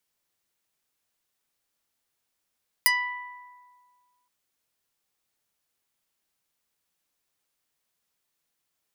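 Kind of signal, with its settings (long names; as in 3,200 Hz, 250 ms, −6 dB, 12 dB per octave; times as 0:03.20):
Karplus-Strong string B5, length 1.42 s, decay 1.82 s, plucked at 0.24, medium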